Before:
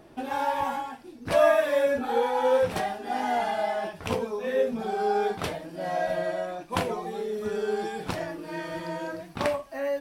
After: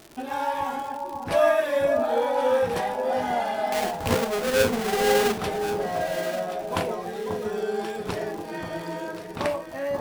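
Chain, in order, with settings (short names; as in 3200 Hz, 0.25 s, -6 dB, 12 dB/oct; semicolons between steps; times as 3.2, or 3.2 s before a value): 3.72–5.38 half-waves squared off; crackle 130/s -33 dBFS; echo with dull and thin repeats by turns 0.539 s, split 1100 Hz, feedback 54%, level -5.5 dB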